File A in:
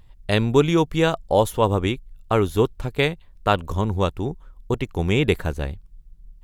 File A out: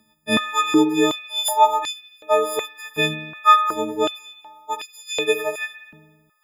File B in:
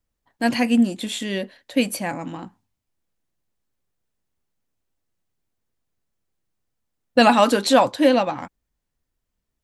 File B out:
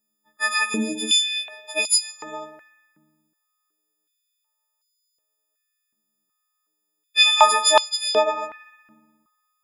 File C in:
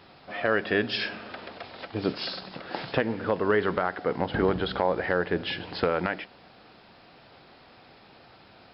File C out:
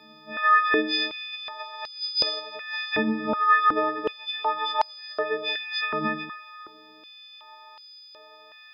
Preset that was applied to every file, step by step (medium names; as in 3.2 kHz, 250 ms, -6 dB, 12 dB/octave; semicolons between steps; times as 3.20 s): partials quantised in pitch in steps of 6 st; spring tank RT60 1.3 s, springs 58 ms, chirp 35 ms, DRR 8.5 dB; step-sequenced high-pass 2.7 Hz 220–4700 Hz; trim -5.5 dB